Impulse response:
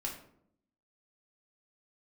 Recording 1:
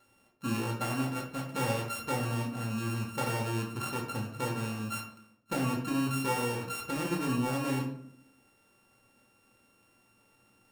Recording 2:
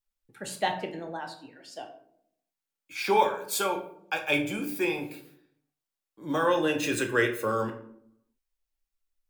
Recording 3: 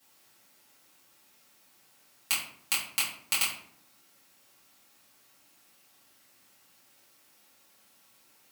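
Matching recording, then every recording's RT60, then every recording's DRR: 1; 0.70, 0.70, 0.70 s; -1.5, 3.0, -11.5 dB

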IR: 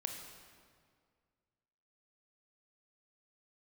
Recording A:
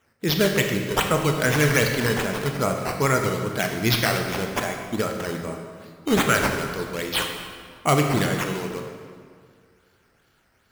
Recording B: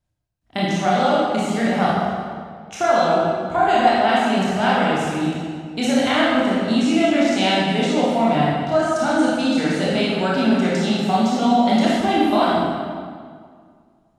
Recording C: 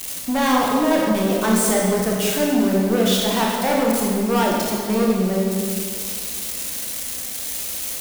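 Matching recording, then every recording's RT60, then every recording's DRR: A; 2.0, 2.0, 2.0 s; 3.0, -7.5, -2.5 dB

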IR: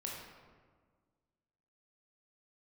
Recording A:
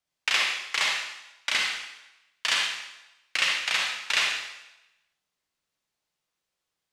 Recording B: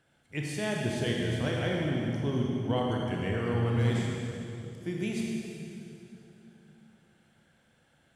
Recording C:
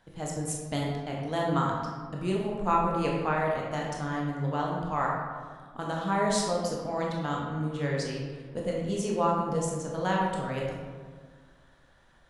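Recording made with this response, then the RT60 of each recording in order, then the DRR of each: C; 0.95, 2.8, 1.6 s; -1.0, -2.0, -3.0 dB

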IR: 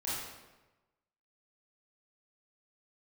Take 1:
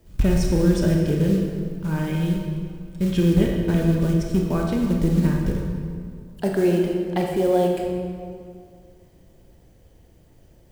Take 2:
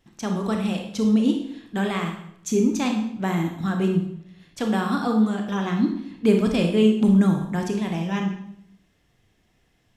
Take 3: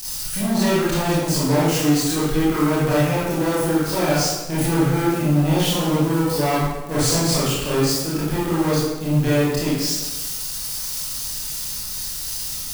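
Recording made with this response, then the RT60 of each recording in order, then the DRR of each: 3; 2.2, 0.70, 1.1 s; 0.0, 2.5, -9.5 dB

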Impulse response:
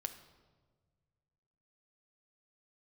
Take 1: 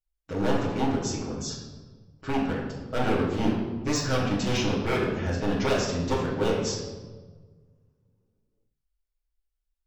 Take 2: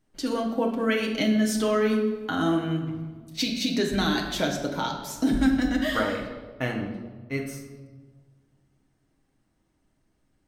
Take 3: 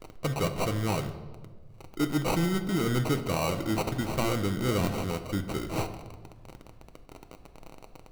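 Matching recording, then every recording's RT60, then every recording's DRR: 3; 1.4, 1.4, 1.5 s; -7.5, 0.0, 7.0 dB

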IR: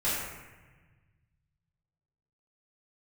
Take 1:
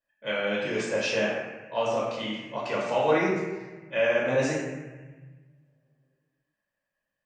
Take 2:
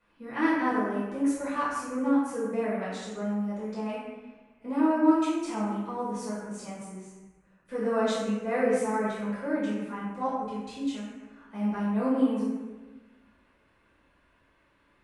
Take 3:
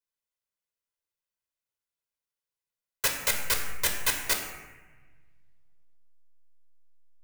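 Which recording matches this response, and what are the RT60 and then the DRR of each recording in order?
2; 1.3, 1.3, 1.3 s; -6.5, -12.0, 2.5 dB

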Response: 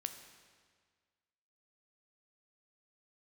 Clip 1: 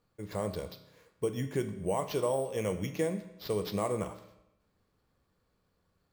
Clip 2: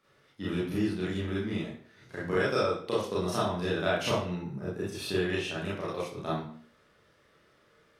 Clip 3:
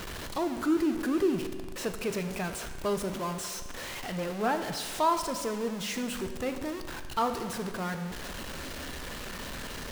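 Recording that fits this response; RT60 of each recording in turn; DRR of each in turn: 3; 0.90, 0.50, 1.7 s; 7.5, -9.0, 7.0 dB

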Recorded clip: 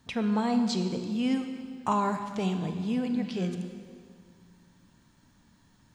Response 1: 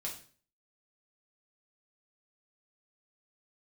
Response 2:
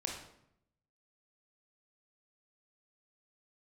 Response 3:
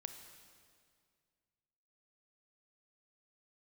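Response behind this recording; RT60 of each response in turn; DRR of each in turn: 3; 0.45, 0.75, 2.1 s; -3.0, 0.0, 6.5 dB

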